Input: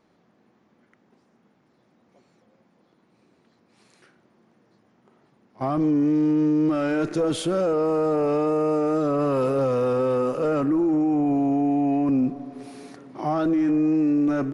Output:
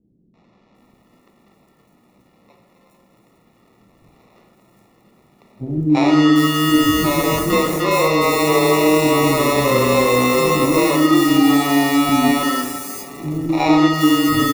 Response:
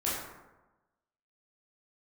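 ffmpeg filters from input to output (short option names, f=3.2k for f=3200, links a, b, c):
-filter_complex "[0:a]acrusher=samples=28:mix=1:aa=0.000001,acrossover=split=330|5700[a][b][c];[b]adelay=340[d];[c]adelay=750[e];[a][d][e]amix=inputs=3:normalize=0,asplit=2[f][g];[1:a]atrim=start_sample=2205[h];[g][h]afir=irnorm=-1:irlink=0,volume=-8dB[i];[f][i]amix=inputs=2:normalize=0,volume=4dB"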